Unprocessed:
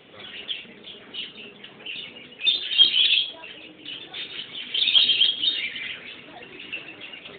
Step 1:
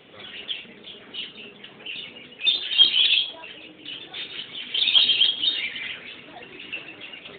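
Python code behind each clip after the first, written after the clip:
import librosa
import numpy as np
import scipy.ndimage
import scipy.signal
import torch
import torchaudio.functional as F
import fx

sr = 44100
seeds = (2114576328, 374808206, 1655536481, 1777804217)

y = fx.dynamic_eq(x, sr, hz=910.0, q=1.7, threshold_db=-45.0, ratio=4.0, max_db=5)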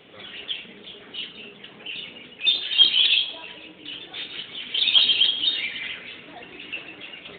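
y = fx.rev_fdn(x, sr, rt60_s=1.9, lf_ratio=1.0, hf_ratio=0.55, size_ms=100.0, drr_db=10.0)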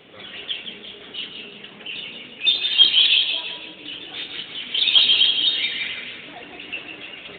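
y = fx.echo_feedback(x, sr, ms=168, feedback_pct=38, wet_db=-7.0)
y = y * librosa.db_to_amplitude(2.0)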